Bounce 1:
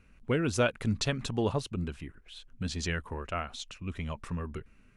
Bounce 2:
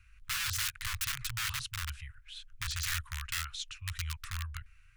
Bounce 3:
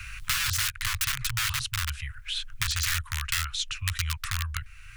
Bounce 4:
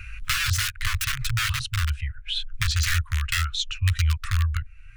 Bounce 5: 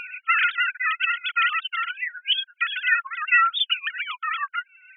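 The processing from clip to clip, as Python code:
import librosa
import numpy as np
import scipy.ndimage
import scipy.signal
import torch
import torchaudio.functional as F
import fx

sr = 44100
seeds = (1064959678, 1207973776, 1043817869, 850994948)

y1 = (np.mod(10.0 ** (28.0 / 20.0) * x + 1.0, 2.0) - 1.0) / 10.0 ** (28.0 / 20.0)
y1 = scipy.signal.sosfilt(scipy.signal.cheby2(4, 50, [210.0, 660.0], 'bandstop', fs=sr, output='sos'), y1)
y1 = y1 * 10.0 ** (1.5 / 20.0)
y2 = fx.band_squash(y1, sr, depth_pct=70)
y2 = y2 * 10.0 ** (7.0 / 20.0)
y3 = fx.spectral_expand(y2, sr, expansion=1.5)
y4 = fx.sine_speech(y3, sr)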